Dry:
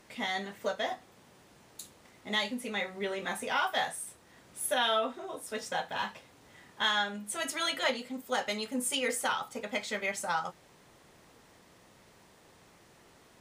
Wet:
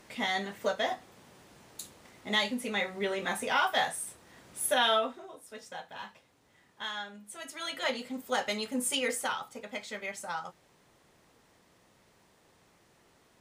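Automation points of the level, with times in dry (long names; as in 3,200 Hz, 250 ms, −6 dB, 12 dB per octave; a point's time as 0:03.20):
0:04.94 +2.5 dB
0:05.37 −9 dB
0:07.49 −9 dB
0:08.02 +1 dB
0:08.98 +1 dB
0:09.61 −5 dB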